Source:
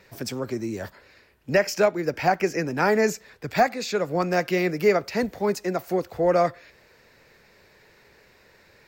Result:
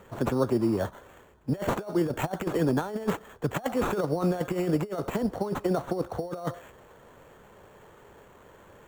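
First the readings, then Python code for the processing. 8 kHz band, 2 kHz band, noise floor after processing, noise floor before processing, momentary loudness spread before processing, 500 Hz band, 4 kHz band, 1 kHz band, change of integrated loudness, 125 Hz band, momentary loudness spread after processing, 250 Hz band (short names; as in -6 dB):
-9.0 dB, -11.5 dB, -54 dBFS, -57 dBFS, 9 LU, -6.5 dB, -8.5 dB, -8.0 dB, -5.0 dB, +1.5 dB, 7 LU, 0.0 dB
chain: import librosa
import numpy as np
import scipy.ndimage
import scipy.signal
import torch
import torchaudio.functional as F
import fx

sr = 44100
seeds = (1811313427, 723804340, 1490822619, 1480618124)

y = fx.sample_hold(x, sr, seeds[0], rate_hz=5000.0, jitter_pct=0)
y = fx.high_shelf_res(y, sr, hz=1600.0, db=-8.5, q=1.5)
y = fx.over_compress(y, sr, threshold_db=-26.0, ratio=-0.5)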